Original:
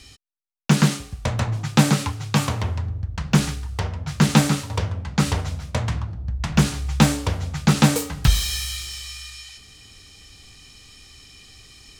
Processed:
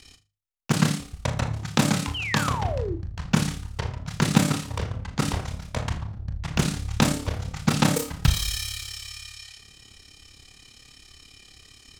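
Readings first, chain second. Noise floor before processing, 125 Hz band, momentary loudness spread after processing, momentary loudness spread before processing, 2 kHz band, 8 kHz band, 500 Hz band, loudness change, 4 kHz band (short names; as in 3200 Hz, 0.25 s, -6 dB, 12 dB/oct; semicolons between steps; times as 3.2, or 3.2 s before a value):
-49 dBFS, -5.0 dB, 11 LU, 12 LU, -2.0 dB, -3.0 dB, -2.0 dB, -4.0 dB, -3.0 dB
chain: notches 50/100/150/200 Hz; AM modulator 35 Hz, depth 80%; painted sound fall, 2.14–2.96, 310–3200 Hz -31 dBFS; flutter echo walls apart 6.7 m, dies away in 0.26 s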